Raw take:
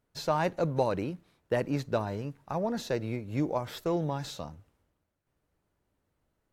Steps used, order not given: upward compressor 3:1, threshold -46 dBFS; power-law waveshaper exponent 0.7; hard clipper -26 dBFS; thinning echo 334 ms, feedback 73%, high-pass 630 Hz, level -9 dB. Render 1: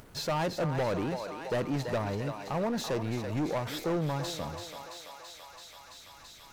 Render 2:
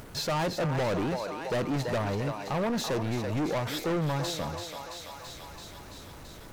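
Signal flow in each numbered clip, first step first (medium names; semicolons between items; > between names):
thinning echo > hard clipper > power-law waveshaper > upward compressor; upward compressor > thinning echo > power-law waveshaper > hard clipper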